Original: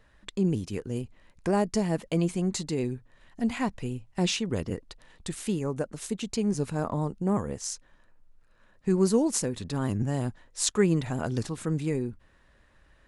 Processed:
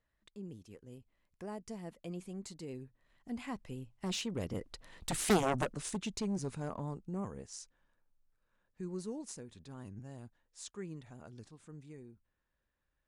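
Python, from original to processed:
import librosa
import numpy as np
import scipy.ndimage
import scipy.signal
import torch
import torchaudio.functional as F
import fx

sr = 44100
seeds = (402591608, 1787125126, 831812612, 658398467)

y = fx.doppler_pass(x, sr, speed_mps=12, closest_m=2.9, pass_at_s=5.31)
y = fx.cheby_harmonics(y, sr, harmonics=(7,), levels_db=(-6,), full_scale_db=-18.0)
y = y * 10.0 ** (-2.0 / 20.0)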